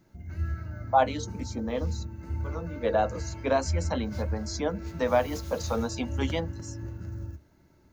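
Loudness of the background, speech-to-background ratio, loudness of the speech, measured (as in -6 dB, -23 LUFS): -36.5 LUFS, 6.5 dB, -30.0 LUFS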